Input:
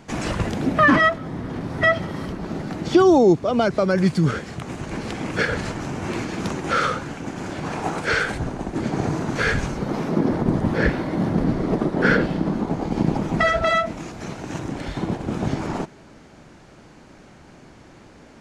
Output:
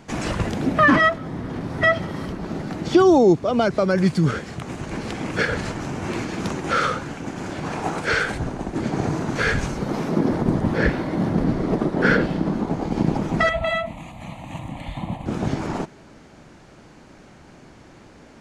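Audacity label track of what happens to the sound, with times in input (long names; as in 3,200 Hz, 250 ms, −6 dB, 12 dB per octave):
9.610000	10.540000	high-shelf EQ 5,300 Hz +4 dB
13.490000	15.260000	phaser with its sweep stopped centre 1,500 Hz, stages 6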